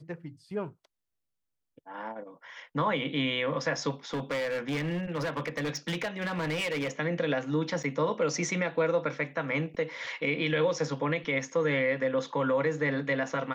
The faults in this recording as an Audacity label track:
4.130000	6.910000	clipped -28 dBFS
7.830000	7.840000	gap 6.9 ms

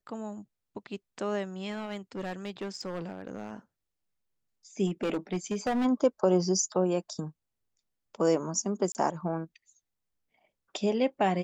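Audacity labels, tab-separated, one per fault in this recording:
1.700000	3.510000	clipped -31 dBFS
4.860000	5.860000	clipped -25 dBFS
8.920000	8.950000	gap 29 ms

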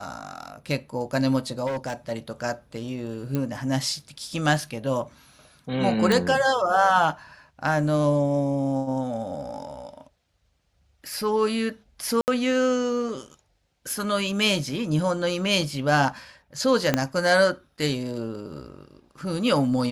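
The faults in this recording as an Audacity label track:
1.660000	2.120000	clipped -25 dBFS
3.350000	3.350000	pop -14 dBFS
6.120000	6.120000	pop
12.210000	12.280000	gap 69 ms
16.940000	16.940000	pop -6 dBFS

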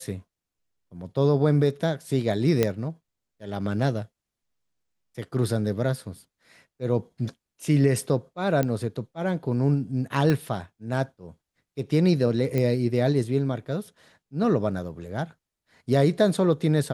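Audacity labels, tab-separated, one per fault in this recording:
2.630000	2.630000	pop -8 dBFS
8.630000	8.630000	pop -12 dBFS
10.300000	10.300000	pop -12 dBFS
12.580000	12.580000	pop -14 dBFS

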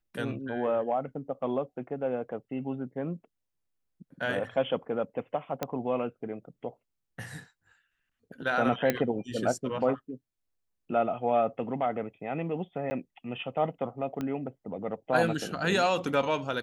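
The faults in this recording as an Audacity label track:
5.630000	5.630000	pop -15 dBFS
8.900000	8.900000	pop -11 dBFS
12.900000	12.910000	gap 10 ms
14.210000	14.210000	pop -21 dBFS

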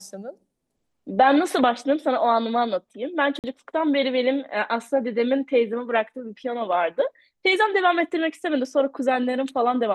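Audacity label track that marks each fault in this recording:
3.390000	3.440000	gap 48 ms

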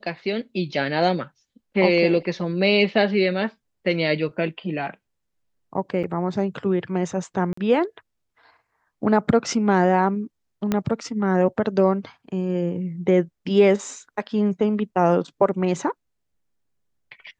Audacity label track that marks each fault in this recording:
6.030000	6.040000	gap 6.9 ms
7.530000	7.570000	gap 44 ms
10.720000	10.720000	pop -9 dBFS

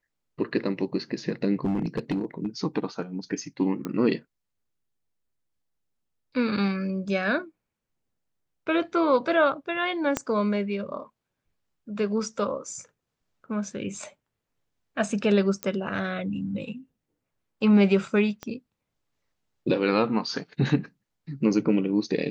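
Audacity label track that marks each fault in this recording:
1.650000	2.470000	clipped -22 dBFS
3.850000	3.850000	pop -19 dBFS
10.170000	10.170000	pop -10 dBFS
15.630000	15.630000	pop -13 dBFS
18.430000	18.430000	pop -20 dBFS

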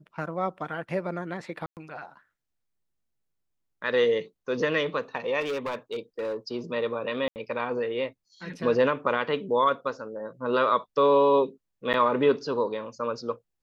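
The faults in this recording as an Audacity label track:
1.660000	1.770000	gap 0.108 s
5.400000	6.360000	clipped -26.5 dBFS
7.280000	7.360000	gap 79 ms
11.930000	11.940000	gap 9.1 ms

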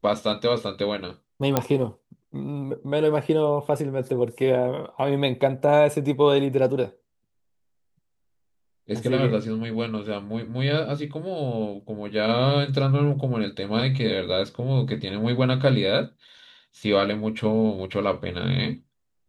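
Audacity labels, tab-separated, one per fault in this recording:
1.570000	1.570000	pop -5 dBFS

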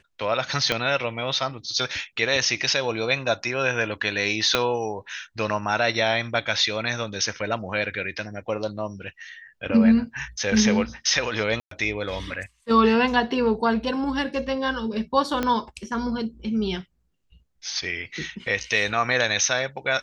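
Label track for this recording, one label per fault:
0.720000	0.720000	pop -8 dBFS
4.550000	4.550000	pop -5 dBFS
11.600000	11.710000	gap 0.113 s
15.430000	15.430000	pop -10 dBFS

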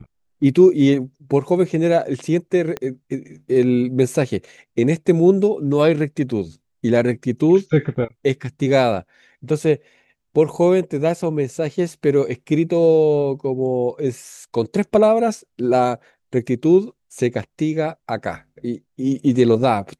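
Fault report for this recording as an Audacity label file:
2.770000	2.770000	pop -13 dBFS

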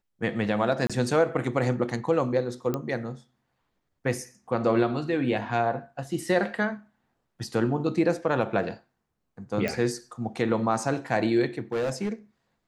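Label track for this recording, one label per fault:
0.870000	0.900000	gap 26 ms
2.740000	2.740000	pop -15 dBFS
9.680000	9.680000	pop -15 dBFS
11.720000	12.130000	clipped -23.5 dBFS

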